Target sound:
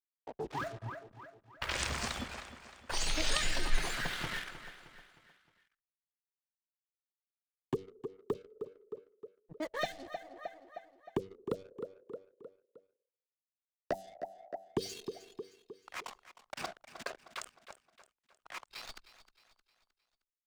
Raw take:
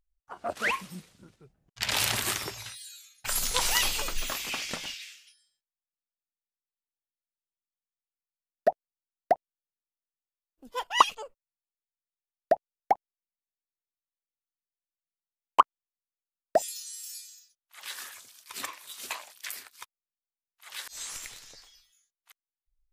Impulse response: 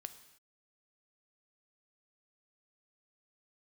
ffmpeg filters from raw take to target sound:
-filter_complex "[0:a]asetrate=49392,aresample=44100,aemphasis=mode=reproduction:type=cd,asetrate=24750,aresample=44100,atempo=1.7818,bandreject=frequency=95.54:width_type=h:width=4,bandreject=frequency=191.08:width_type=h:width=4,bandreject=frequency=286.62:width_type=h:width=4,bandreject=frequency=382.16:width_type=h:width=4,bandreject=frequency=477.7:width_type=h:width=4,bandreject=frequency=573.24:width_type=h:width=4,bandreject=frequency=668.78:width_type=h:width=4,bandreject=frequency=764.32:width_type=h:width=4,aeval=exprs='val(0)*gte(abs(val(0)),0.00501)':channel_layout=same,asplit=2[link_01][link_02];[1:a]atrim=start_sample=2205,asetrate=23814,aresample=44100[link_03];[link_02][link_03]afir=irnorm=-1:irlink=0,volume=-8.5dB[link_04];[link_01][link_04]amix=inputs=2:normalize=0,anlmdn=0.1,dynaudnorm=framelen=600:gausssize=13:maxgain=11.5dB,aecho=1:1:310|620|930|1240:0.178|0.08|0.036|0.0162,acrossover=split=190|3000[link_05][link_06][link_07];[link_06]acompressor=threshold=-34dB:ratio=5[link_08];[link_05][link_08][link_07]amix=inputs=3:normalize=0,volume=-3dB"

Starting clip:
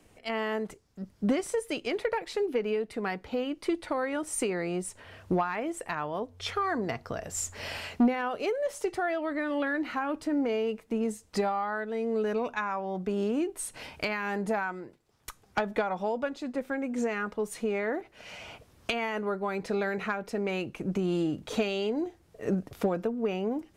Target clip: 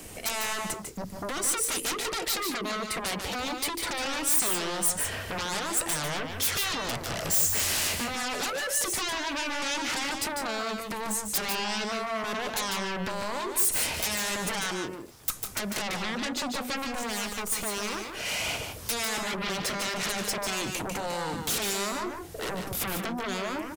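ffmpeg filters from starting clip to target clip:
ffmpeg -i in.wav -filter_complex "[0:a]asettb=1/sr,asplit=3[link_01][link_02][link_03];[link_01]atrim=end=16.874[link_04];[link_02]atrim=start=16.87:end=18.14,asetpts=PTS-STARTPTS,afade=type=in:duration=0.004:curve=qsin,afade=type=out:start_time=1.266:duration=0.004:curve=qsin,aeval=exprs='if(lt(val(0),0),0.251*val(0),val(0))':channel_layout=same[link_05];[link_03]atrim=start=18.136[link_06];[link_04][link_05]acrossfade=duration=0.004:curve1=hsin:curve2=qsin[link_07];[link_07][link_06]acrossfade=duration=0.004:curve1=qsin:curve2=hsin,acompressor=threshold=-35dB:ratio=5,aeval=exprs='0.0668*sin(PI/2*7.08*val(0)/0.0668)':channel_layout=same,crystalizer=i=2:c=0,aecho=1:1:148|172:0.501|0.224,volume=-7dB" out.wav

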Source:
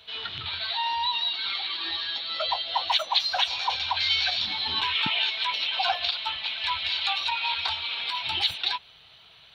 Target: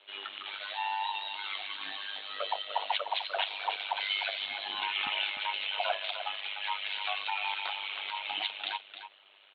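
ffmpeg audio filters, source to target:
ffmpeg -i in.wav -af "aecho=1:1:301:0.316,highpass=frequency=360:width_type=q:width=0.5412,highpass=frequency=360:width_type=q:width=1.307,lowpass=frequency=3300:width_type=q:width=0.5176,lowpass=frequency=3300:width_type=q:width=0.7071,lowpass=frequency=3300:width_type=q:width=1.932,afreqshift=-52,tremolo=f=100:d=0.75,volume=-1.5dB" out.wav

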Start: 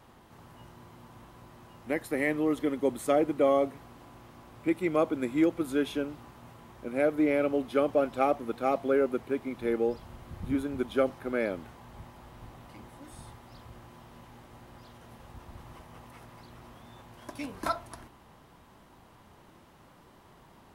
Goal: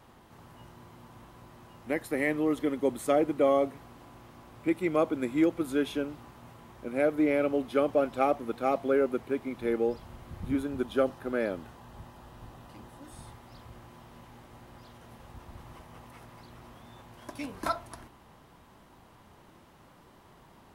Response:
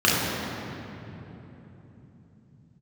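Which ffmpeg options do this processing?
-filter_complex "[0:a]asettb=1/sr,asplit=3[link_01][link_02][link_03];[link_01]atrim=end=10.664[link_04];[link_02]atrim=start=10.66:end=13.15,asetpts=PTS-STARTPTS,afade=type=in:duration=0.004:curve=qsin,afade=type=out:start_time=2.486:duration=0.004:curve=qsin,bandreject=frequency=2200:width=9.1[link_05];[link_03]atrim=start=13.146[link_06];[link_04][link_05]acrossfade=duration=0.004:curve1=hsin:curve2=qsin[link_07];[link_07][link_06]acrossfade=duration=0.004:curve1=qsin:curve2=hsin"

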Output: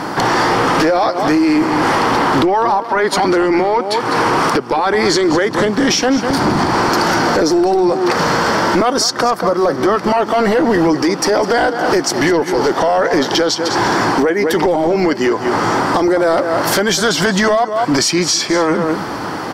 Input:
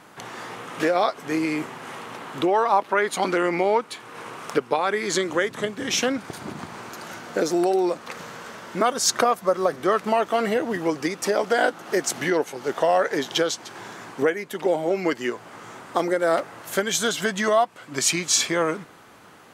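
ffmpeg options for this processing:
ffmpeg -i in.wav -af "superequalizer=6b=1.58:9b=1.41:12b=0.708:14b=2.82,aecho=1:1:202:0.158,acompressor=threshold=-32dB:ratio=6,highshelf=frequency=3000:gain=-11,apsyclip=35dB,volume=-8.5dB" out.wav

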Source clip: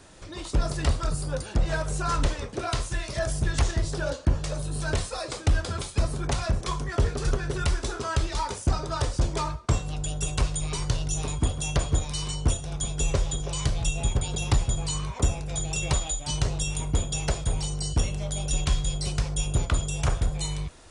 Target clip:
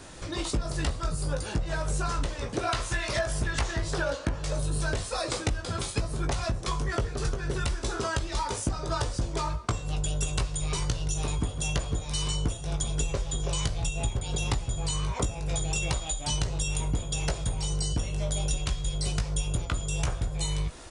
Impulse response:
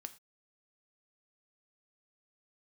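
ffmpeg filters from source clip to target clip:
-filter_complex "[0:a]asettb=1/sr,asplit=3[link_01][link_02][link_03];[link_01]atrim=end=2.694[link_04];[link_02]atrim=start=2.69:end=4.44,asetpts=PTS-STARTPTS,afade=type=in:duration=0.004:curve=qsin,afade=type=out:start_time=1.746:duration=0.004:curve=qsin,equalizer=frequency=1500:width=0.38:gain=7.5[link_05];[link_03]atrim=start=4.436[link_06];[link_04][link_05]acrossfade=duration=0.004:curve1=hsin:curve2=qsin[link_07];[link_07][link_06]acrossfade=duration=0.004:curve1=qsin:curve2=hsin,acompressor=threshold=-31dB:ratio=10,asplit=2[link_08][link_09];[link_09]adelay=18,volume=-7.5dB[link_10];[link_08][link_10]amix=inputs=2:normalize=0,volume=5dB"

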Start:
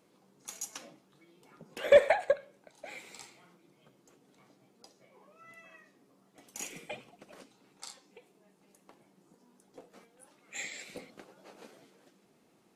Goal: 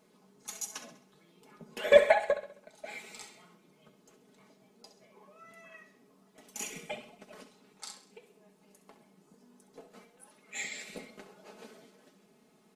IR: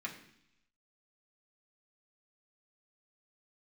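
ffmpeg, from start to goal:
-af "aecho=1:1:4.7:0.7,aecho=1:1:66|132|198|264|330:0.237|0.109|0.0502|0.0231|0.0106"

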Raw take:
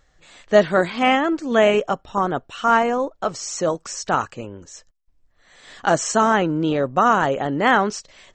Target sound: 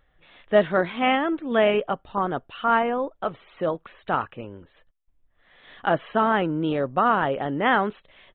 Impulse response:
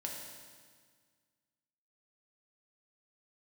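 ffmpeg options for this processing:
-af "aresample=8000,aresample=44100,volume=-4dB"

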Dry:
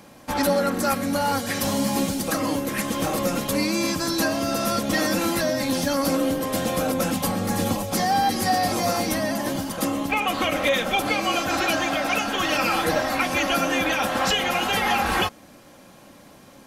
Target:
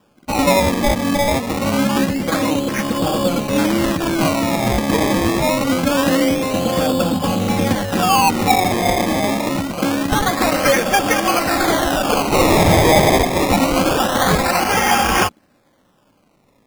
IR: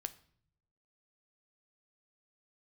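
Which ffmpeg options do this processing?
-filter_complex "[0:a]afwtdn=0.0282,asettb=1/sr,asplit=3[link_01][link_02][link_03];[link_01]atrim=end=12.324[link_04];[link_02]atrim=start=12.32:end=13.18,asetpts=PTS-STARTPTS,afade=type=in:duration=0.004:curve=qsin,afade=type=out:start_time=0.856:duration=0.004:curve=qsin,asplit=2[link_05][link_06];[link_06]highpass=frequency=720:poles=1,volume=20dB,asoftclip=type=tanh:threshold=-11.5dB[link_07];[link_05][link_07]amix=inputs=2:normalize=0,lowpass=frequency=2300:poles=1,volume=-6dB[link_08];[link_03]atrim=start=13.176[link_09];[link_04][link_08]acrossfade=duration=0.004:curve1=hsin:curve2=qsin[link_10];[link_10][link_09]acrossfade=duration=0.004:curve1=qsin:curve2=hsin,acrusher=samples=21:mix=1:aa=0.000001:lfo=1:lforange=21:lforate=0.25,volume=7dB"

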